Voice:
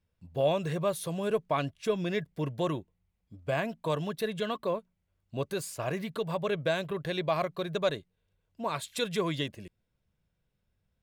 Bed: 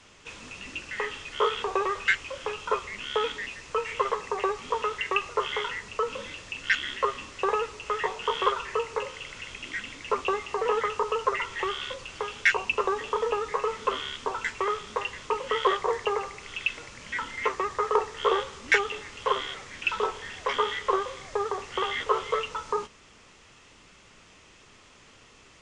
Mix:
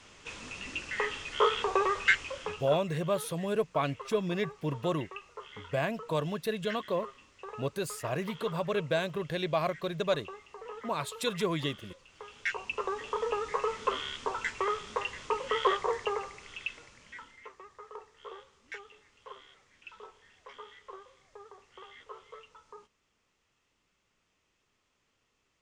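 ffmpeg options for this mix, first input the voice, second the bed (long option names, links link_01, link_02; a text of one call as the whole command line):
ffmpeg -i stem1.wav -i stem2.wav -filter_complex "[0:a]adelay=2250,volume=-0.5dB[link_01];[1:a]volume=14.5dB,afade=type=out:start_time=2.19:duration=0.63:silence=0.133352,afade=type=in:start_time=12.08:duration=1.5:silence=0.177828,afade=type=out:start_time=15.73:duration=1.71:silence=0.112202[link_02];[link_01][link_02]amix=inputs=2:normalize=0" out.wav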